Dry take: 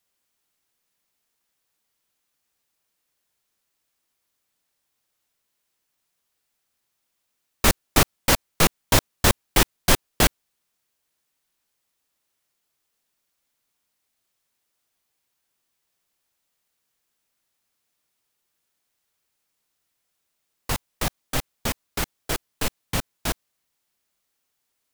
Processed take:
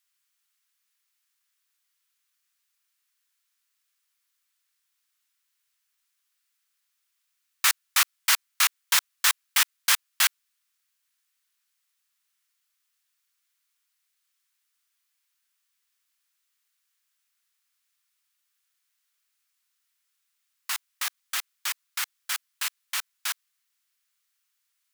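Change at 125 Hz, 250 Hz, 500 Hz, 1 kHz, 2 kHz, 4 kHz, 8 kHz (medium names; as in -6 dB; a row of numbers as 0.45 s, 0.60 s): under -40 dB, under -40 dB, -26.0 dB, -6.0 dB, 0.0 dB, 0.0 dB, 0.0 dB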